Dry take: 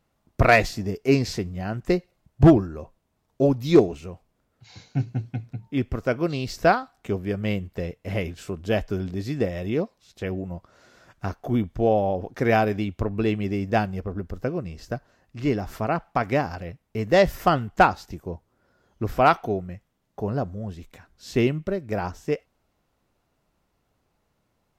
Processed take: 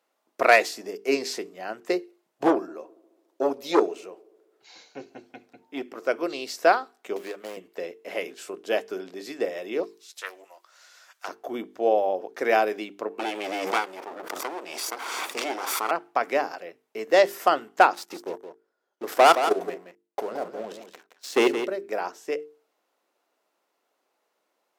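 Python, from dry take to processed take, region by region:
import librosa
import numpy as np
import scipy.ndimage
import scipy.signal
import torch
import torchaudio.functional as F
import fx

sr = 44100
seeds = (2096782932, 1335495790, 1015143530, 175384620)

y = fx.chain(x, sr, fx.echo_tape(ms=70, feedback_pct=79, wet_db=-23.0, lp_hz=1500.0, drive_db=7.0, wow_cents=5),
    fx.transformer_sat(knee_hz=530.0), at=(2.47, 6.09))
y = fx.chain(y, sr, fx.median_filter(points=25),
    fx.low_shelf(hz=430.0, db=-11.5),
    fx.band_squash(depth_pct=100), at=(7.16, 7.57))
y = fx.chain(y, sr, fx.highpass(hz=1000.0, slope=12),
    fx.high_shelf(hz=3300.0, db=10.0),
    fx.doppler_dist(depth_ms=0.16), at=(9.83, 11.28))
y = fx.chain(y, sr, fx.lower_of_two(delay_ms=0.87),
    fx.highpass(hz=350.0, slope=12),
    fx.pre_swell(db_per_s=20.0), at=(13.19, 15.91))
y = fx.chain(y, sr, fx.leveller(passes=3),
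    fx.level_steps(step_db=13),
    fx.echo_single(ms=170, db=-9.5), at=(17.93, 21.66))
y = fx.dynamic_eq(y, sr, hz=9600.0, q=1.4, threshold_db=-56.0, ratio=4.0, max_db=5)
y = scipy.signal.sosfilt(scipy.signal.butter(4, 340.0, 'highpass', fs=sr, output='sos'), y)
y = fx.hum_notches(y, sr, base_hz=50, count=9)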